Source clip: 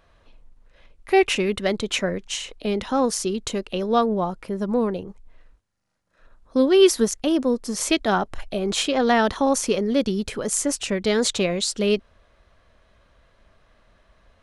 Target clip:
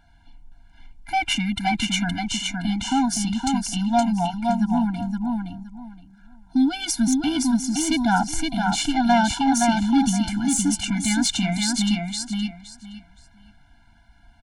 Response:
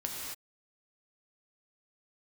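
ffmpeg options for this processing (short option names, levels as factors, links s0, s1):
-af "aecho=1:1:518|1036|1554:0.631|0.126|0.0252,acontrast=86,afftfilt=real='re*eq(mod(floor(b*sr/1024/340),2),0)':imag='im*eq(mod(floor(b*sr/1024/340),2),0)':win_size=1024:overlap=0.75,volume=0.668"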